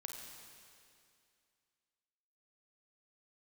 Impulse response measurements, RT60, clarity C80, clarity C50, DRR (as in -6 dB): 2.4 s, 3.0 dB, 2.0 dB, 0.5 dB